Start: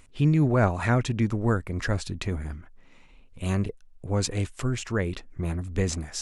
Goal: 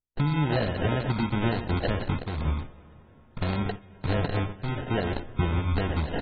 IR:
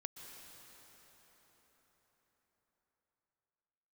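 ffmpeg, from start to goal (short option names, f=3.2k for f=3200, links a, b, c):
-filter_complex "[0:a]acompressor=threshold=-32dB:ratio=12,asplit=2[a][b];[b]adelay=121,lowpass=f=4.7k:p=1,volume=-10.5dB,asplit=2[c][d];[d]adelay=121,lowpass=f=4.7k:p=1,volume=0.29,asplit=2[e][f];[f]adelay=121,lowpass=f=4.7k:p=1,volume=0.29[g];[a][c][e][g]amix=inputs=4:normalize=0,aeval=exprs='val(0)+0.00141*(sin(2*PI*60*n/s)+sin(2*PI*2*60*n/s)/2+sin(2*PI*3*60*n/s)/3+sin(2*PI*4*60*n/s)/4+sin(2*PI*5*60*n/s)/5)':c=same,alimiter=level_in=3dB:limit=-24dB:level=0:latency=1:release=369,volume=-3dB,agate=range=-54dB:threshold=-42dB:ratio=16:detection=peak,acrusher=samples=38:mix=1:aa=0.000001,asplit=2[h][i];[1:a]atrim=start_sample=2205,adelay=61[j];[i][j]afir=irnorm=-1:irlink=0,volume=-13dB[k];[h][k]amix=inputs=2:normalize=0,acontrast=24,asplit=2[l][m];[m]adelay=14,volume=-12dB[n];[l][n]amix=inputs=2:normalize=0,volume=5.5dB" -ar 32000 -c:a aac -b:a 16k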